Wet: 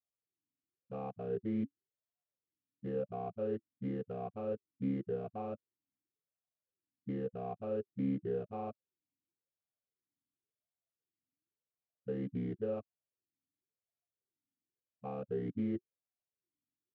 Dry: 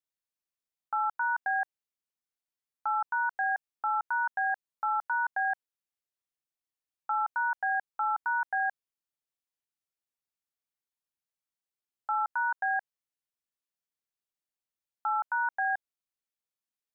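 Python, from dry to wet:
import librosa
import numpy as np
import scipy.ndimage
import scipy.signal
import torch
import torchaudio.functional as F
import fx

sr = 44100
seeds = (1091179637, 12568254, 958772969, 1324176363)

y = fx.octave_mirror(x, sr, pivot_hz=410.0)
y = np.clip(y, -10.0 ** (-32.5 / 20.0), 10.0 ** (-32.5 / 20.0))
y = fx.vowel_sweep(y, sr, vowels='a-i', hz=0.93)
y = y * librosa.db_to_amplitude(15.5)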